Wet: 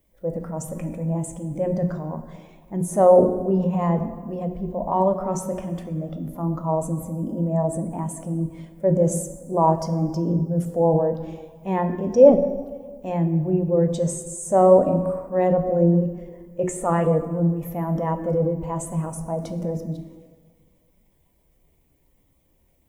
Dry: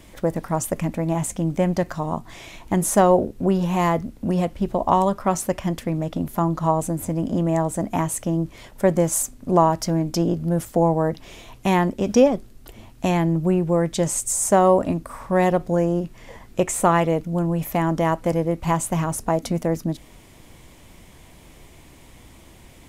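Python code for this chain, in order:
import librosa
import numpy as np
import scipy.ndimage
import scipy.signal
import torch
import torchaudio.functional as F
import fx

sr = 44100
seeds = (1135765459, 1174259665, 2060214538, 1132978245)

y = fx.peak_eq(x, sr, hz=520.0, db=4.5, octaves=0.48)
y = fx.hum_notches(y, sr, base_hz=60, count=6)
y = fx.transient(y, sr, attack_db=-5, sustain_db=7)
y = fx.dmg_noise_colour(y, sr, seeds[0], colour='violet', level_db=-47.0)
y = fx.rev_plate(y, sr, seeds[1], rt60_s=2.3, hf_ratio=0.65, predelay_ms=0, drr_db=4.5)
y = fx.spectral_expand(y, sr, expansion=1.5)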